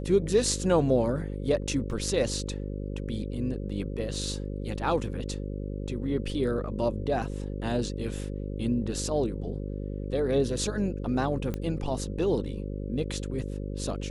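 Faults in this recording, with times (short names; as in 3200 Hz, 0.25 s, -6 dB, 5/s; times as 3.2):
buzz 50 Hz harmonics 11 -34 dBFS
1.91 gap 2.5 ms
11.54 pop -19 dBFS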